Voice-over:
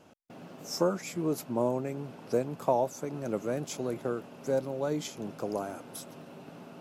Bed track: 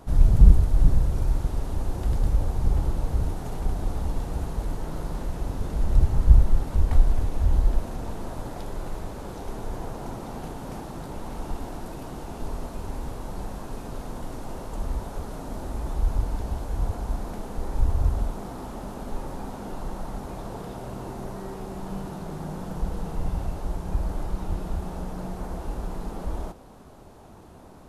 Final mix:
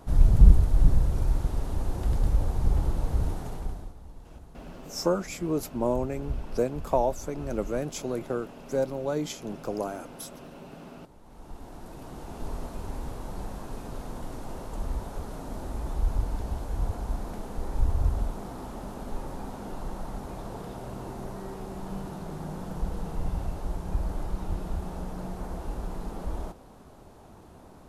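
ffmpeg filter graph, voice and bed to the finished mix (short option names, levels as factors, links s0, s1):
-filter_complex "[0:a]adelay=4250,volume=1.26[s0];[1:a]volume=5.31,afade=t=out:st=3.34:d=0.6:silence=0.141254,afade=t=in:st=11.22:d=1.3:silence=0.158489[s1];[s0][s1]amix=inputs=2:normalize=0"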